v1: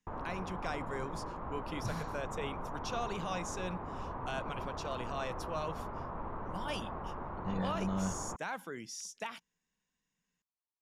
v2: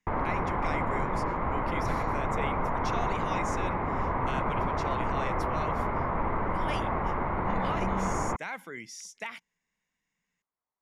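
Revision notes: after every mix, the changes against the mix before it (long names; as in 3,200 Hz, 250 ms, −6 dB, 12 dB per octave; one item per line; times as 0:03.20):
background +11.5 dB
master: add parametric band 2,100 Hz +12.5 dB 0.33 octaves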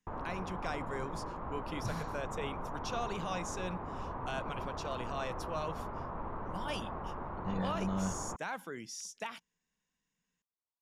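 background −11.0 dB
master: add parametric band 2,100 Hz −12.5 dB 0.33 octaves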